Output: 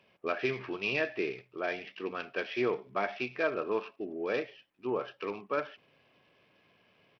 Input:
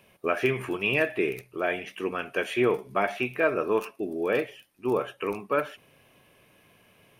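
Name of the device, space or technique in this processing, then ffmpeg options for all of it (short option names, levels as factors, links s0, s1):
Bluetooth headset: -af "highpass=f=150:p=1,aresample=8000,aresample=44100,volume=0.501" -ar 44100 -c:a sbc -b:a 64k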